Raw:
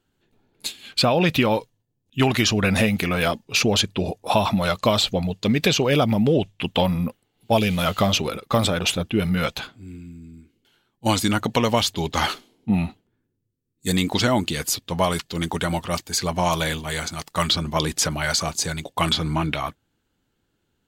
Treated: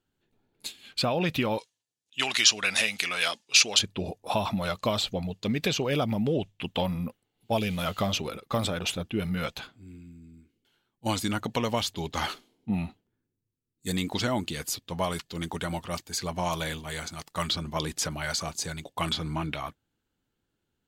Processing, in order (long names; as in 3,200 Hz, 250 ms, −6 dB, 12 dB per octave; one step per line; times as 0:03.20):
0:01.58–0:03.79: meter weighting curve ITU-R 468
level −8 dB